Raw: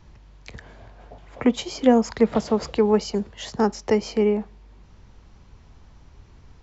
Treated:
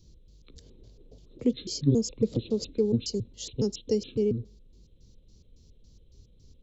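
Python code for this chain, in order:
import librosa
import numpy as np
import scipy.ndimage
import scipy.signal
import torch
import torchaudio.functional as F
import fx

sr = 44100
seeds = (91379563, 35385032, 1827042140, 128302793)

y = fx.pitch_trill(x, sr, semitones=-10.5, every_ms=139)
y = fx.curve_eq(y, sr, hz=(500.0, 730.0, 1100.0, 1700.0, 4300.0), db=(0, -21, -22, -25, 8))
y = y * 10.0 ** (-6.0 / 20.0)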